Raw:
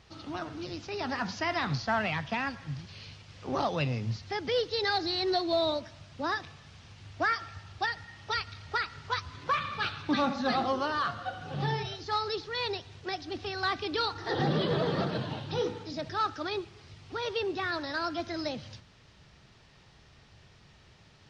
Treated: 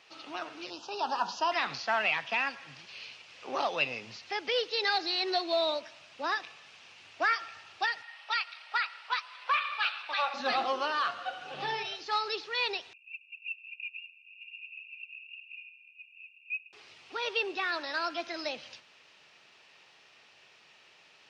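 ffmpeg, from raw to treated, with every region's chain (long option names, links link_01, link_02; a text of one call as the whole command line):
ffmpeg -i in.wav -filter_complex "[0:a]asettb=1/sr,asplit=3[link_01][link_02][link_03];[link_01]atrim=end=0.704[link_04];[link_02]atrim=start=0.7:end=1.52,asetpts=PTS-STARTPTS,afade=type=in:duration=0.004:curve=qsin,afade=type=out:start_time=0.816:duration=0.004:curve=qsin,asuperstop=centerf=2100:order=4:qfactor=1.5,equalizer=frequency=920:width_type=o:width=0.4:gain=10[link_05];[link_03]atrim=start=1.516[link_06];[link_04][link_05]acrossfade=duration=0.004:curve1=hsin:curve2=qsin[link_07];[link_07][link_06]acrossfade=duration=0.004:curve1=qsin:curve2=hsin,asettb=1/sr,asplit=3[link_08][link_09][link_10];[link_08]atrim=end=8.024[link_11];[link_09]atrim=start=8.02:end=10.34,asetpts=PTS-STARTPTS,afade=type=in:duration=0.004:curve=qsin,afade=type=out:start_time=2.316:duration=0.004:curve=qsin,highpass=frequency=630:width=0.5412,highpass=frequency=630:width=1.3066,equalizer=frequency=6600:width_type=o:width=0.36:gain=-12.5[link_12];[link_10]atrim=start=10.336[link_13];[link_11][link_12]acrossfade=duration=0.004:curve1=hsin:curve2=qsin[link_14];[link_14][link_13]acrossfade=duration=0.004:curve1=qsin:curve2=hsin,asettb=1/sr,asplit=3[link_15][link_16][link_17];[link_15]atrim=end=12.934[link_18];[link_16]atrim=start=12.93:end=16.73,asetpts=PTS-STARTPTS,afade=type=in:duration=0.004:curve=qsin,afade=type=out:start_time=3.796:duration=0.004:curve=qsin,asuperpass=centerf=2600:order=20:qfactor=6.1,aphaser=in_gain=1:out_gain=1:delay=3.1:decay=0.24:speed=1.1:type=sinusoidal[link_19];[link_17]atrim=start=16.726[link_20];[link_18][link_19]acrossfade=duration=0.004:curve1=hsin:curve2=qsin[link_21];[link_21][link_20]acrossfade=duration=0.004:curve1=qsin:curve2=hsin,highpass=470,equalizer=frequency=2600:width_type=o:width=0.44:gain=8.5" out.wav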